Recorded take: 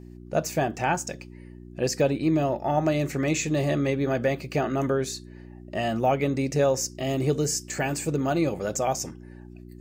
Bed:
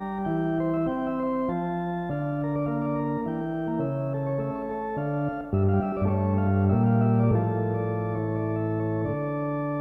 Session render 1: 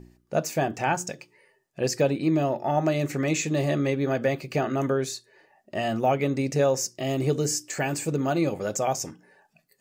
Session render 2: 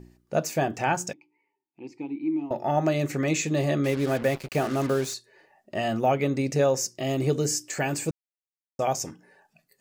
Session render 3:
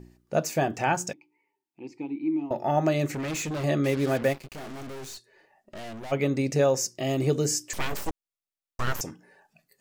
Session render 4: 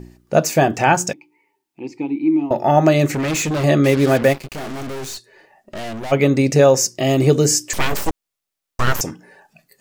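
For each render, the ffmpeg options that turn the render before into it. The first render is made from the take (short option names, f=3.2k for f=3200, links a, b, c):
-af "bandreject=f=60:t=h:w=4,bandreject=f=120:t=h:w=4,bandreject=f=180:t=h:w=4,bandreject=f=240:t=h:w=4,bandreject=f=300:t=h:w=4,bandreject=f=360:t=h:w=4"
-filter_complex "[0:a]asettb=1/sr,asplit=3[a][b][c];[a]atrim=end=1.134[d];[b]atrim=start=1.13:end=2.51,asetpts=PTS-STARTPTS,afade=t=in:d=0.004:c=qsin,afade=t=out:st=1.376:d=0.004:c=qsin,asplit=3[e][f][g];[e]bandpass=f=300:t=q:w=8,volume=0dB[h];[f]bandpass=f=870:t=q:w=8,volume=-6dB[i];[g]bandpass=f=2.24k:t=q:w=8,volume=-9dB[j];[h][i][j]amix=inputs=3:normalize=0[k];[c]atrim=start=2.506[l];[d][k]acrossfade=d=0.004:c1=hsin:c2=qsin[m];[m][l]acrossfade=d=0.004:c1=qsin:c2=hsin,asettb=1/sr,asplit=3[n][o][p];[n]atrim=end=3.844[q];[o]atrim=start=3.84:end=5.14,asetpts=PTS-STARTPTS,afade=t=in:d=0.004:c=qsin,afade=t=out:st=1.296:d=0.004:c=qsin,acrusher=bits=5:mix=0:aa=0.5[r];[p]atrim=start=5.136[s];[q][r]acrossfade=d=0.004:c1=hsin:c2=qsin[t];[t][s]acrossfade=d=0.004:c1=qsin:c2=hsin,asplit=3[u][v][w];[u]atrim=end=8.11,asetpts=PTS-STARTPTS,afade=t=out:st=8.106:d=0.004:c=hsin[x];[v]atrim=start=8.11:end=8.79,asetpts=PTS-STARTPTS,volume=0[y];[w]atrim=start=8.79,asetpts=PTS-STARTPTS,afade=t=in:d=0.004:c=hsin[z];[x][y][z]concat=n=3:v=0:a=1"
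-filter_complex "[0:a]asettb=1/sr,asplit=3[a][b][c];[a]atrim=end=3.074[d];[b]atrim=start=3.07:end=3.64,asetpts=PTS-STARTPTS,afade=t=in:d=0.004:c=qsin,afade=t=out:st=0.566:d=0.004:c=qsin,asoftclip=type=hard:threshold=-29dB[e];[c]atrim=start=3.636[f];[d][e]acrossfade=d=0.004:c1=hsin:c2=qsin[g];[g][f]acrossfade=d=0.004:c1=qsin:c2=hsin,asplit=3[h][i][j];[h]afade=t=out:st=4.32:d=0.02[k];[i]aeval=exprs='(tanh(79.4*val(0)+0.55)-tanh(0.55))/79.4':c=same,afade=t=in:st=4.32:d=0.02,afade=t=out:st=6.11:d=0.02[l];[j]afade=t=in:st=6.11:d=0.02[m];[k][l][m]amix=inputs=3:normalize=0,asettb=1/sr,asplit=3[n][o][p];[n]atrim=end=7.734[q];[o]atrim=start=7.73:end=9.01,asetpts=PTS-STARTPTS,afade=t=in:d=0.004:c=qsin,afade=t=out:st=1.276:d=0.004:c=qsin,aeval=exprs='abs(val(0))':c=same[r];[p]atrim=start=9.006[s];[q][r]acrossfade=d=0.004:c1=hsin:c2=qsin[t];[t][s]acrossfade=d=0.004:c1=qsin:c2=hsin"
-af "volume=10.5dB,alimiter=limit=-2dB:level=0:latency=1"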